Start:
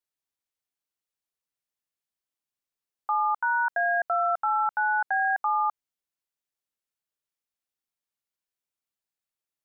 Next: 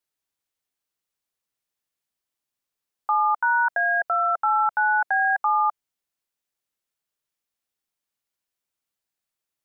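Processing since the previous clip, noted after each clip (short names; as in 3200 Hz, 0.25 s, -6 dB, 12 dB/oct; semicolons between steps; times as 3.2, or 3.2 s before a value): dynamic EQ 690 Hz, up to -5 dB, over -41 dBFS, Q 5.8; gain +4.5 dB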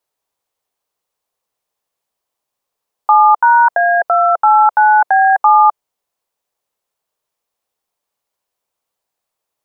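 band shelf 690 Hz +8.5 dB; gain +5.5 dB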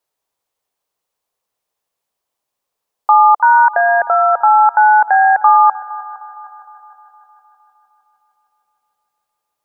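multi-head echo 0.154 s, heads second and third, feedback 52%, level -21 dB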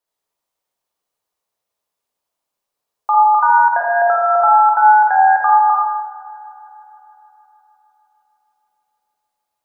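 reverb RT60 1.1 s, pre-delay 43 ms, DRR -3 dB; gain -6.5 dB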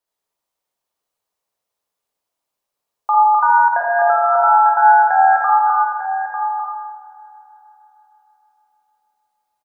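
echo 0.897 s -9.5 dB; gain -1 dB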